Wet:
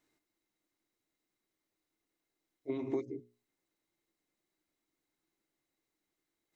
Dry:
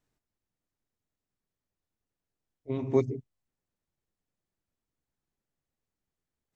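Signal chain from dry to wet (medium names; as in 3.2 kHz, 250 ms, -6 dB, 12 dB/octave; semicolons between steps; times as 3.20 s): bass shelf 360 Hz -5 dB; compression 8:1, threshold -39 dBFS, peak gain reduction 18 dB; bass shelf 130 Hz -11 dB; hum notches 60/120/180/240/300/360/420/480/540 Hz; small resonant body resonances 320/2100/3900 Hz, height 13 dB, ringing for 45 ms; trim +3.5 dB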